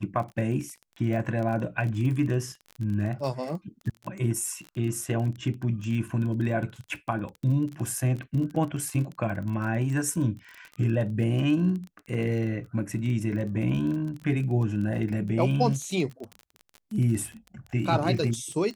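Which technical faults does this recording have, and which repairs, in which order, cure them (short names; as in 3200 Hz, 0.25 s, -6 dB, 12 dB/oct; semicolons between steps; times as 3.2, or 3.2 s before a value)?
crackle 30/s -33 dBFS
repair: de-click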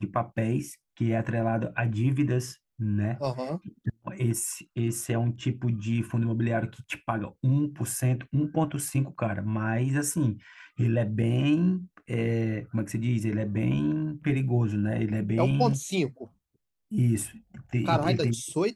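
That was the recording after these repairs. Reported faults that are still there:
none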